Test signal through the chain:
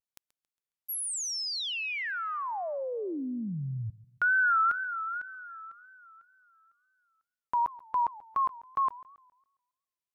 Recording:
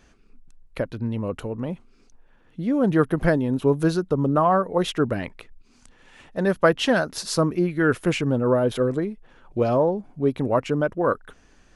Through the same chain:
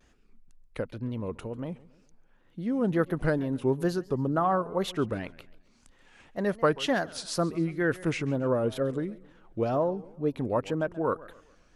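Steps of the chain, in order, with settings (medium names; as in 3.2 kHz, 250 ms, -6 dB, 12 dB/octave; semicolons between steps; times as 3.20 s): wow and flutter 130 cents; modulated delay 137 ms, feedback 40%, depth 200 cents, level -20 dB; trim -6.5 dB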